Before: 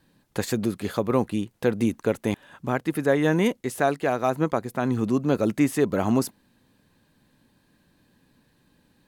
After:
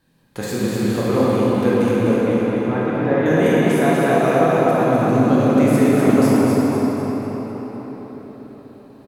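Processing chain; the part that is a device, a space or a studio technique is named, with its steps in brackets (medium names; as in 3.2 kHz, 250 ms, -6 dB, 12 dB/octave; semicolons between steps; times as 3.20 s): 1.91–3.26 s: distance through air 280 m; feedback delay 250 ms, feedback 45%, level -4.5 dB; cathedral (reverberation RT60 5.3 s, pre-delay 15 ms, DRR -8 dB); trim -2.5 dB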